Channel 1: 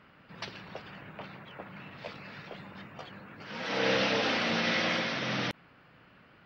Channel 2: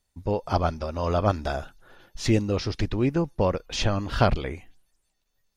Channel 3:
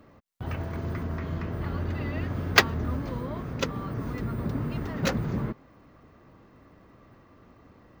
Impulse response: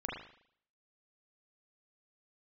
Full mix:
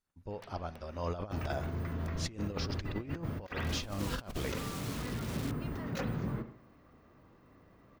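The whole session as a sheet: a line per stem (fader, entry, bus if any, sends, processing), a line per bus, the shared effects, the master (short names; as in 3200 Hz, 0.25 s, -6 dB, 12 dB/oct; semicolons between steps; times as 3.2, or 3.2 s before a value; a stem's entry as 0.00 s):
-14.5 dB, 0.00 s, no send, gate -55 dBFS, range -26 dB; high shelf 4200 Hz -12 dB; wrapped overs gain 29 dB
0.7 s -19 dB -> 1.17 s -9.5 dB, 0.00 s, send -18.5 dB, dry
-11.5 dB, 0.90 s, send -7 dB, high shelf 11000 Hz +5.5 dB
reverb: on, RT60 0.65 s, pre-delay 36 ms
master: negative-ratio compressor -35 dBFS, ratio -0.5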